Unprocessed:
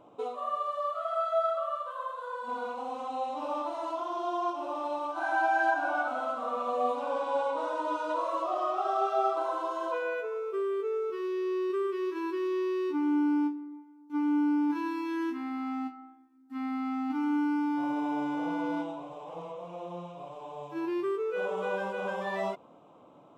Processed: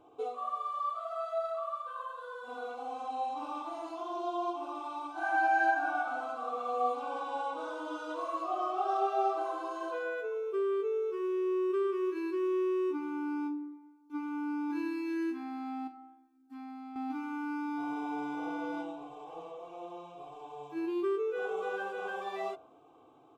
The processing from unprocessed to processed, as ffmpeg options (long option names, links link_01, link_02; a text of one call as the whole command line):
ffmpeg -i in.wav -filter_complex "[0:a]asettb=1/sr,asplit=3[link_01][link_02][link_03];[link_01]atrim=end=15.874[link_04];[link_02]atrim=start=15.87:end=16.96,asetpts=PTS-STARTPTS,afade=type=in:duration=0.004:curve=qsin,afade=type=out:start_time=1.086:duration=0.004:curve=qsin,acompressor=threshold=-37dB:ratio=6:attack=3.2:release=140:knee=1:detection=peak[link_05];[link_03]atrim=start=16.956[link_06];[link_04][link_05]acrossfade=duration=0.004:curve1=hsin:curve2=qsin[link_07];[link_07][link_06]acrossfade=duration=0.004:curve1=qsin:curve2=hsin,bandreject=frequency=1900:width=9.7,aecho=1:1:2.6:0.8,bandreject=frequency=59.07:width_type=h:width=4,bandreject=frequency=118.14:width_type=h:width=4,bandreject=frequency=177.21:width_type=h:width=4,bandreject=frequency=236.28:width_type=h:width=4,bandreject=frequency=295.35:width_type=h:width=4,bandreject=frequency=354.42:width_type=h:width=4,bandreject=frequency=413.49:width_type=h:width=4,bandreject=frequency=472.56:width_type=h:width=4,bandreject=frequency=531.63:width_type=h:width=4,bandreject=frequency=590.7:width_type=h:width=4,bandreject=frequency=649.77:width_type=h:width=4,bandreject=frequency=708.84:width_type=h:width=4,bandreject=frequency=767.91:width_type=h:width=4,bandreject=frequency=826.98:width_type=h:width=4,bandreject=frequency=886.05:width_type=h:width=4,bandreject=frequency=945.12:width_type=h:width=4,bandreject=frequency=1004.19:width_type=h:width=4,bandreject=frequency=1063.26:width_type=h:width=4,bandreject=frequency=1122.33:width_type=h:width=4,bandreject=frequency=1181.4:width_type=h:width=4,bandreject=frequency=1240.47:width_type=h:width=4,bandreject=frequency=1299.54:width_type=h:width=4,bandreject=frequency=1358.61:width_type=h:width=4,bandreject=frequency=1417.68:width_type=h:width=4,bandreject=frequency=1476.75:width_type=h:width=4,bandreject=frequency=1535.82:width_type=h:width=4,bandreject=frequency=1594.89:width_type=h:width=4,volume=-5dB" out.wav